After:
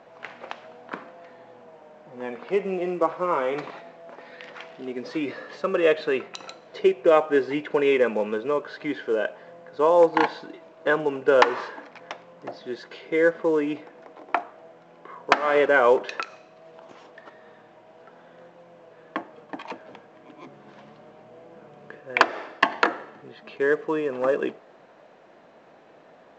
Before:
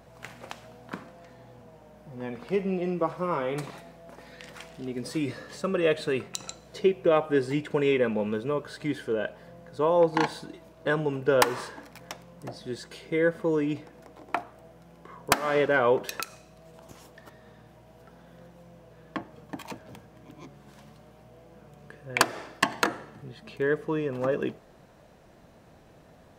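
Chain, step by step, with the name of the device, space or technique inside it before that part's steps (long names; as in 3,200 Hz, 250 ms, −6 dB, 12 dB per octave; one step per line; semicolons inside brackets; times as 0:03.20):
0:20.46–0:22.00: low-shelf EQ 310 Hz +7.5 dB
telephone (band-pass filter 340–3,000 Hz; level +5.5 dB; mu-law 128 kbit/s 16,000 Hz)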